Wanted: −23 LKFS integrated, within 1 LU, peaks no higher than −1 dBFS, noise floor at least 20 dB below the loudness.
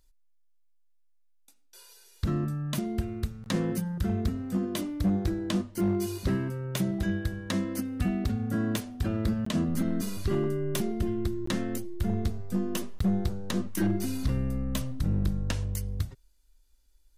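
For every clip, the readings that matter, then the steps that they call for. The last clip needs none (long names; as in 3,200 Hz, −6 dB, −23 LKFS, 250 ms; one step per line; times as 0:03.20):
share of clipped samples 0.9%; peaks flattened at −20.0 dBFS; number of dropouts 3; longest dropout 14 ms; integrated loudness −30.5 LKFS; sample peak −20.0 dBFS; target loudness −23.0 LKFS
→ clipped peaks rebuilt −20 dBFS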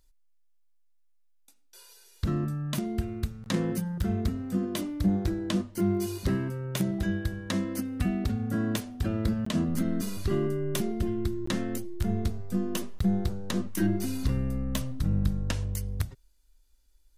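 share of clipped samples 0.0%; number of dropouts 3; longest dropout 14 ms
→ repair the gap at 0:09.45/0:11.46/0:12.99, 14 ms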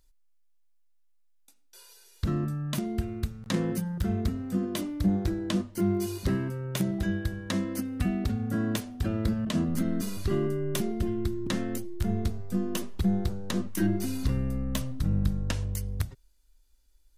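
number of dropouts 0; integrated loudness −30.5 LKFS; sample peak −11.0 dBFS; target loudness −23.0 LKFS
→ level +7.5 dB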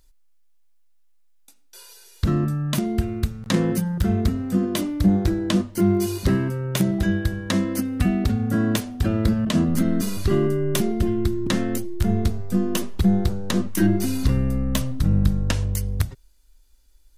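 integrated loudness −23.0 LKFS; sample peak −3.5 dBFS; background noise floor −55 dBFS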